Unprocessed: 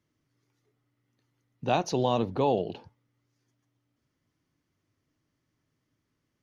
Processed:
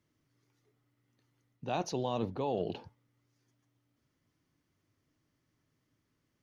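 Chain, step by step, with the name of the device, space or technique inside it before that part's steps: compression on the reversed sound (reverse; compression 5:1, threshold -30 dBFS, peak gain reduction 10 dB; reverse)

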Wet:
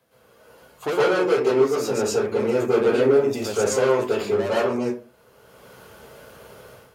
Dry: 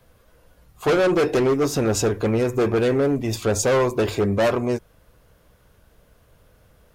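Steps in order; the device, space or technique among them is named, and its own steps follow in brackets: far laptop microphone (reverberation RT60 0.35 s, pre-delay 110 ms, DRR -9.5 dB; high-pass 190 Hz 12 dB/octave; level rider gain up to 12.5 dB); trim -7 dB

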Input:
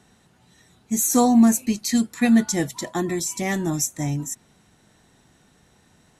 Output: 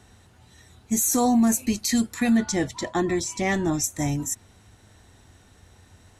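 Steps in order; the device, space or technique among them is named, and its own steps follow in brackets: 2.37–3.84 s: distance through air 77 m; car stereo with a boomy subwoofer (resonant low shelf 120 Hz +6 dB, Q 3; peak limiter -16 dBFS, peak gain reduction 7.5 dB); trim +2.5 dB

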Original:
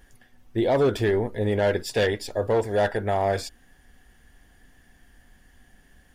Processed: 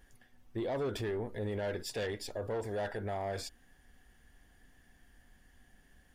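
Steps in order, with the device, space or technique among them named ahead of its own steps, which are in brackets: soft clipper into limiter (saturation -16 dBFS, distortion -20 dB; peak limiter -23 dBFS, peak gain reduction 5.5 dB); trim -7 dB

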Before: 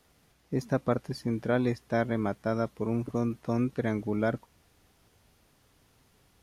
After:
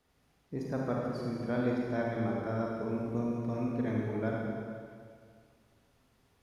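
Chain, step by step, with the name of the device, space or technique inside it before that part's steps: swimming-pool hall (reverberation RT60 2.1 s, pre-delay 33 ms, DRR -3 dB; treble shelf 4.8 kHz -6.5 dB); trim -8.5 dB

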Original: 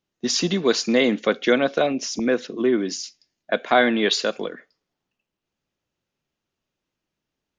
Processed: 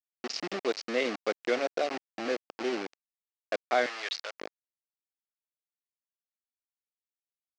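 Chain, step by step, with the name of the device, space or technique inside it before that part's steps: local Wiener filter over 41 samples; hand-held game console (bit crusher 4-bit; cabinet simulation 420–5100 Hz, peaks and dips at 960 Hz -7 dB, 1.5 kHz -4 dB, 3.5 kHz -7 dB); 3.86–4.41 s: high-pass 980 Hz 12 dB/octave; trim -6.5 dB

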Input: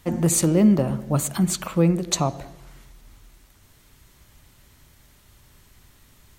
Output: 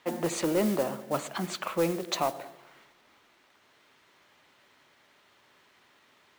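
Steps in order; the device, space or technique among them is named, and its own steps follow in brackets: carbon microphone (band-pass 420–3400 Hz; saturation -17 dBFS, distortion -18 dB; modulation noise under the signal 16 dB)

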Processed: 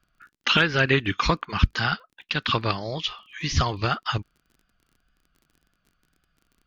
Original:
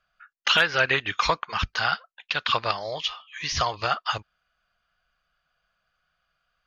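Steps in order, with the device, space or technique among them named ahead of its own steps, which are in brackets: lo-fi chain (low-pass 6.6 kHz 12 dB/octave; wow and flutter; crackle 25 per s -46 dBFS); resonant low shelf 430 Hz +10.5 dB, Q 1.5

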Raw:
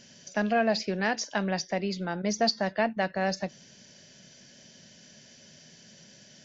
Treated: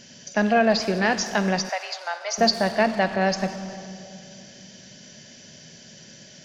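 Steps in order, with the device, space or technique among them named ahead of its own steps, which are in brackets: saturated reverb return (on a send at -5.5 dB: reverberation RT60 2.2 s, pre-delay 48 ms + saturation -30 dBFS, distortion -9 dB); 1.69–2.38 s: on the sum: steep high-pass 630 Hz 36 dB/octave; trim +6 dB

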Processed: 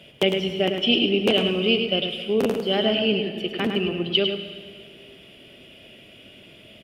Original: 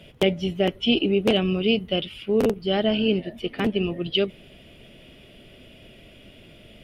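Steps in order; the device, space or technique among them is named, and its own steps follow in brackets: PA in a hall (high-pass 180 Hz 6 dB/octave; peaking EQ 2.9 kHz +4 dB 0.46 oct; delay 105 ms -6.5 dB; reverberation RT60 1.9 s, pre-delay 61 ms, DRR 9.5 dB)

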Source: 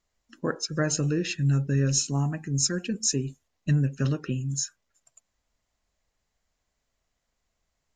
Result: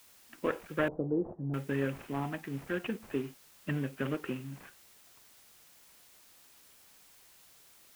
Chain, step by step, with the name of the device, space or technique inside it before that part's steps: army field radio (band-pass 300–3400 Hz; CVSD coder 16 kbps; white noise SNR 22 dB); 0.88–1.54 s: steep low-pass 840 Hz 36 dB/octave

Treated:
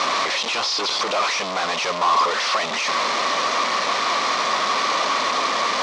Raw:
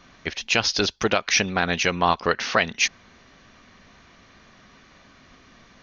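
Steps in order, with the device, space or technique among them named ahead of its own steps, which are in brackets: home computer beeper (one-bit comparator; cabinet simulation 510–5600 Hz, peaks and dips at 570 Hz +4 dB, 1.1 kHz +9 dB, 1.6 kHz -7 dB, 2.8 kHz -4 dB); trim +6.5 dB

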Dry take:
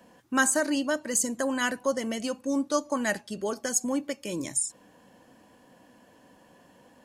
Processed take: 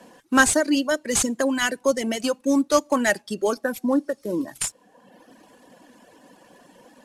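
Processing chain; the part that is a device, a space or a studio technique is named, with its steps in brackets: 0.53–2.03 s: dynamic bell 1 kHz, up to -5 dB, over -38 dBFS, Q 1; 3.65–4.59 s: spectral replace 1.9–11 kHz before; early wireless headset (high-pass 250 Hz 12 dB/octave; CVSD coder 64 kbps); reverb removal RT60 1 s; bass shelf 250 Hz +7 dB; trim +7.5 dB

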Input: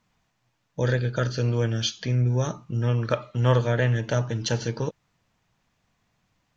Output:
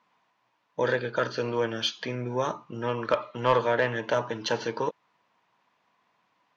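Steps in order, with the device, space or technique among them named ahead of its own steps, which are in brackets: intercom (band-pass 330–3700 Hz; peaking EQ 1 kHz +9 dB 0.31 oct; saturation -14.5 dBFS, distortion -18 dB); trim +2.5 dB

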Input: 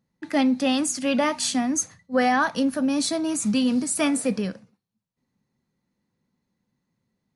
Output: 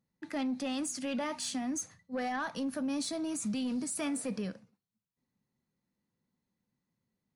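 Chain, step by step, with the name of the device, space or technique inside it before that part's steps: soft clipper into limiter (saturation -15 dBFS, distortion -20 dB; peak limiter -20.5 dBFS, peak gain reduction 5 dB); trim -8 dB

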